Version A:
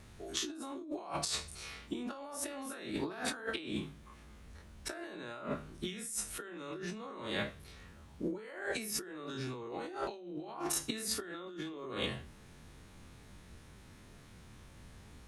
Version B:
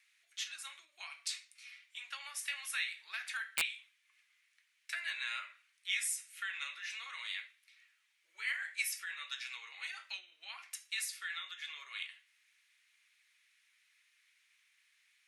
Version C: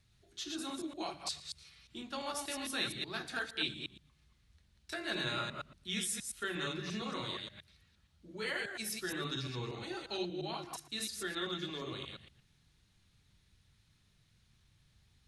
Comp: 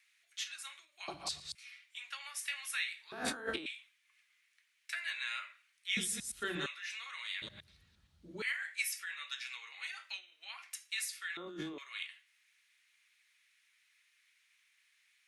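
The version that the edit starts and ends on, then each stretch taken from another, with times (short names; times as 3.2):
B
1.08–1.55 from C
3.12–3.66 from A
5.97–6.66 from C
7.42–8.42 from C
11.37–11.78 from A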